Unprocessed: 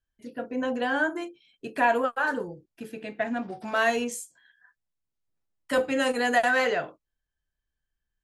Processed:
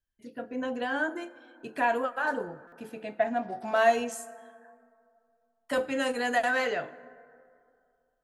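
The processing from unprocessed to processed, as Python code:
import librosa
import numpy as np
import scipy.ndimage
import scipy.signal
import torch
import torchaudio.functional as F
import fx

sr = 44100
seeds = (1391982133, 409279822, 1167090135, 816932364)

y = fx.peak_eq(x, sr, hz=720.0, db=9.0, octaves=0.68, at=(2.25, 5.74))
y = fx.rev_plate(y, sr, seeds[0], rt60_s=2.4, hf_ratio=0.4, predelay_ms=0, drr_db=16.5)
y = fx.buffer_glitch(y, sr, at_s=(2.67,), block=256, repeats=8)
y = F.gain(torch.from_numpy(y), -4.0).numpy()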